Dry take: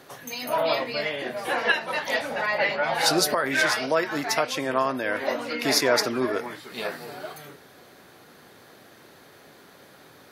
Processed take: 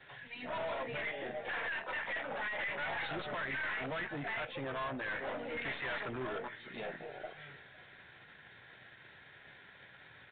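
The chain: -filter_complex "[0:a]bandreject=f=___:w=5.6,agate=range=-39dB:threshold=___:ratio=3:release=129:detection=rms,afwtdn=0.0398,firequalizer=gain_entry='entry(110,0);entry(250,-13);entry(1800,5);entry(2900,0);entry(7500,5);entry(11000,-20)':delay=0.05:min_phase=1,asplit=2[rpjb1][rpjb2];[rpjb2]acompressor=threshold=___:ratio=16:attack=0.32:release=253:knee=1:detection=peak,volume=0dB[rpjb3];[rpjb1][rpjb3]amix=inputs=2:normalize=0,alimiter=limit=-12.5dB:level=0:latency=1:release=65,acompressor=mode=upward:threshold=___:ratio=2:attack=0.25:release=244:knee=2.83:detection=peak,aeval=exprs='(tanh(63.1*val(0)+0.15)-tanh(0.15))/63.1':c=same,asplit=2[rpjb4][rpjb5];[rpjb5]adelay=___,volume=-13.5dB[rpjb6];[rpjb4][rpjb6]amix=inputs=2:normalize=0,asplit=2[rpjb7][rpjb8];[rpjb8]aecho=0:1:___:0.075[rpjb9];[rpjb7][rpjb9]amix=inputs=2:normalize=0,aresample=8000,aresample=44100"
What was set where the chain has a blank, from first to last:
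1200, -47dB, -35dB, -35dB, 15, 504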